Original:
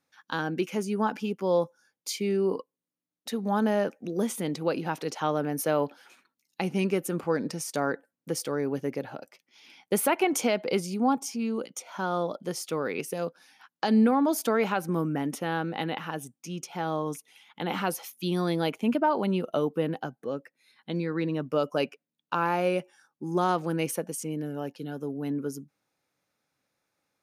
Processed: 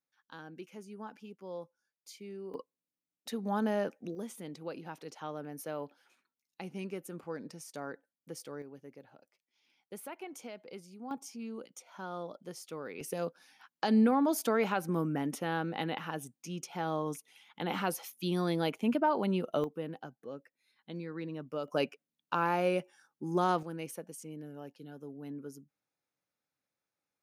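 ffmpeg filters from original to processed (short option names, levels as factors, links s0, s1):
-af "asetnsamples=n=441:p=0,asendcmd='2.54 volume volume -6dB;4.15 volume volume -13.5dB;8.62 volume volume -20dB;11.11 volume volume -12dB;13.01 volume volume -4dB;19.64 volume volume -11dB;21.68 volume volume -3.5dB;23.63 volume volume -12dB',volume=0.126"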